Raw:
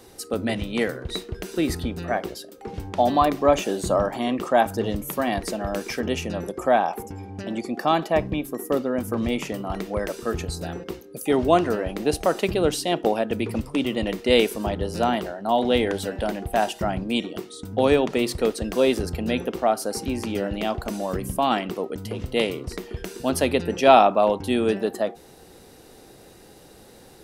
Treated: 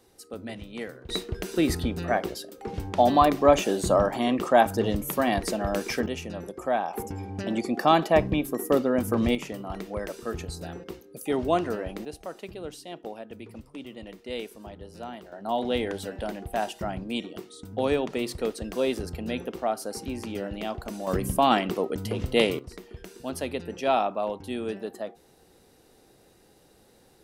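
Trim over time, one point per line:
-12 dB
from 1.09 s 0 dB
from 6.06 s -7 dB
from 6.94 s +1 dB
from 9.35 s -6 dB
from 12.05 s -16.5 dB
from 15.32 s -6.5 dB
from 21.07 s +1 dB
from 22.59 s -10 dB

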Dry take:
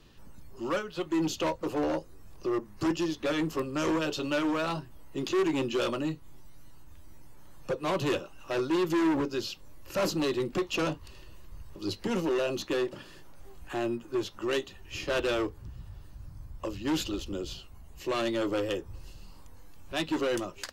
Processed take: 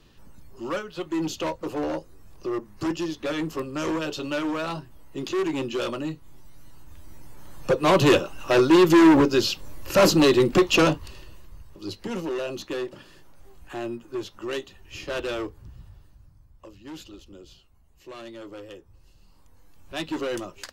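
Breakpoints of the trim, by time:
6.13 s +1 dB
7.99 s +11.5 dB
10.77 s +11.5 dB
11.69 s -1 dB
15.81 s -1 dB
16.44 s -11 dB
18.96 s -11 dB
20.01 s 0 dB

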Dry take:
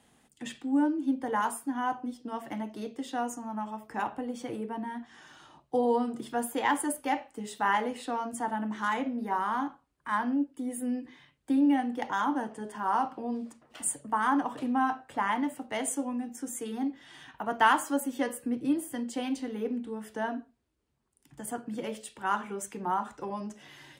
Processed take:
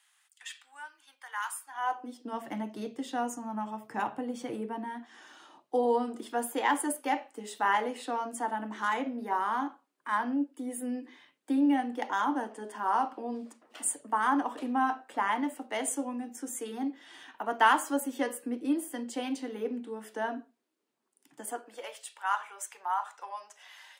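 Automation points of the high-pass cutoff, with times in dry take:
high-pass 24 dB/octave
1.60 s 1.2 kHz
2.03 s 320 Hz
2.68 s 110 Hz
4.34 s 110 Hz
4.90 s 250 Hz
21.41 s 250 Hz
21.97 s 730 Hz

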